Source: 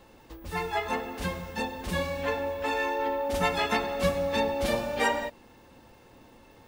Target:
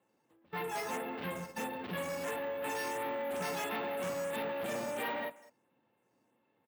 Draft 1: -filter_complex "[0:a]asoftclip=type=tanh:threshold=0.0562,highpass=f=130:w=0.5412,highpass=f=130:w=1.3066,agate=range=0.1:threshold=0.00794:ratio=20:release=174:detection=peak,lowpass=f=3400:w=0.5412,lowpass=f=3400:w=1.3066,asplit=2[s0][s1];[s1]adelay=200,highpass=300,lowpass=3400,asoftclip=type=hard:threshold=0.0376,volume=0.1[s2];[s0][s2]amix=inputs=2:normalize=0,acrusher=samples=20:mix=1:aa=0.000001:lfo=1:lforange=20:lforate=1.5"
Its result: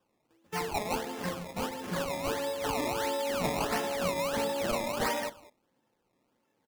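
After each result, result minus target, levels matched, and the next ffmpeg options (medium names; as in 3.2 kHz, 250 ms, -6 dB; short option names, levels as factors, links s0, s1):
decimation with a swept rate: distortion +15 dB; saturation: distortion -6 dB
-filter_complex "[0:a]asoftclip=type=tanh:threshold=0.0562,highpass=f=130:w=0.5412,highpass=f=130:w=1.3066,agate=range=0.1:threshold=0.00794:ratio=20:release=174:detection=peak,lowpass=f=3400:w=0.5412,lowpass=f=3400:w=1.3066,asplit=2[s0][s1];[s1]adelay=200,highpass=300,lowpass=3400,asoftclip=type=hard:threshold=0.0376,volume=0.1[s2];[s0][s2]amix=inputs=2:normalize=0,acrusher=samples=4:mix=1:aa=0.000001:lfo=1:lforange=4:lforate=1.5"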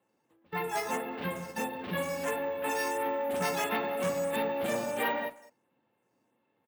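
saturation: distortion -6 dB
-filter_complex "[0:a]asoftclip=type=tanh:threshold=0.02,highpass=f=130:w=0.5412,highpass=f=130:w=1.3066,agate=range=0.1:threshold=0.00794:ratio=20:release=174:detection=peak,lowpass=f=3400:w=0.5412,lowpass=f=3400:w=1.3066,asplit=2[s0][s1];[s1]adelay=200,highpass=300,lowpass=3400,asoftclip=type=hard:threshold=0.0376,volume=0.1[s2];[s0][s2]amix=inputs=2:normalize=0,acrusher=samples=4:mix=1:aa=0.000001:lfo=1:lforange=4:lforate=1.5"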